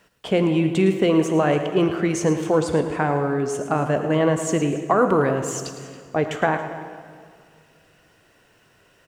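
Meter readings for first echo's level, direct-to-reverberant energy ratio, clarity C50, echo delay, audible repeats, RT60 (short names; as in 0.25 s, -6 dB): -12.5 dB, 6.5 dB, 7.5 dB, 0.11 s, 2, 2.1 s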